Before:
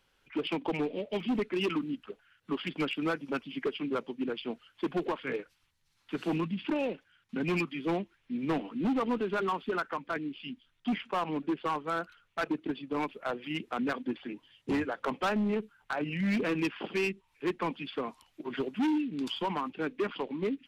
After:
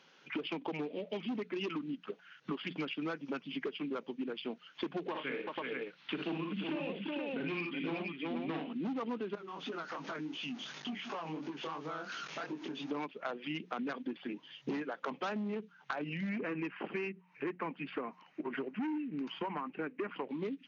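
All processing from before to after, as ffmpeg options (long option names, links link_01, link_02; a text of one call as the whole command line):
ffmpeg -i in.wav -filter_complex "[0:a]asettb=1/sr,asplit=3[link_01][link_02][link_03];[link_01]atrim=end=5.104[link_04];[link_02]atrim=start=5.1:end=8.73,asetpts=PTS-STARTPTS,afade=type=in:duration=0.004:curve=qsin,afade=type=out:start_time=3.626:duration=0.004:curve=qsin,lowpass=frequency=3300:width_type=q:width=1.7,aecho=1:1:42|57|83|370|475:0.422|0.596|0.224|0.501|0.562,atrim=end_sample=160083[link_05];[link_03]atrim=start=8.726[link_06];[link_04][link_05]acrossfade=duration=0.004:curve1=hsin:curve2=qsin[link_07];[link_07][link_06]acrossfade=duration=0.004:curve1=qsin:curve2=hsin,asettb=1/sr,asplit=3[link_08][link_09][link_10];[link_08]atrim=end=9.354[link_11];[link_09]atrim=start=9.35:end=12.91,asetpts=PTS-STARTPTS,afade=type=in:duration=0.004:curve=qsin,afade=type=out:start_time=3.556:duration=0.004:curve=qsin,aeval=exprs='val(0)+0.5*0.00668*sgn(val(0))':channel_layout=same,acompressor=threshold=-44dB:ratio=4:attack=3.2:release=140:knee=1:detection=peak,flanger=delay=19:depth=7.5:speed=2.8[link_12];[link_10]atrim=start=12.906[link_13];[link_11][link_12]acrossfade=duration=0.004:curve1=hsin:curve2=qsin[link_14];[link_14][link_13]acrossfade=duration=0.004:curve1=qsin:curve2=hsin,asettb=1/sr,asplit=3[link_15][link_16][link_17];[link_15]atrim=end=16.294[link_18];[link_16]atrim=start=16.29:end=20.29,asetpts=PTS-STARTPTS,afade=type=in:duration=0.004:curve=qsin,afade=type=out:start_time=3.996:duration=0.004:curve=qsin,highshelf=frequency=3000:width_type=q:width=1.5:gain=-10.5,bandreject=frequency=3400:width=9.9[link_19];[link_17]atrim=start=20.286[link_20];[link_18][link_19]acrossfade=duration=0.004:curve1=hsin:curve2=qsin[link_21];[link_21][link_20]acrossfade=duration=0.004:curve1=qsin:curve2=hsin,bandreject=frequency=60:width_type=h:width=6,bandreject=frequency=120:width_type=h:width=6,bandreject=frequency=180:width_type=h:width=6,afftfilt=real='re*between(b*sr/4096,130,6800)':imag='im*between(b*sr/4096,130,6800)':win_size=4096:overlap=0.75,acompressor=threshold=-46dB:ratio=6,volume=9dB" out.wav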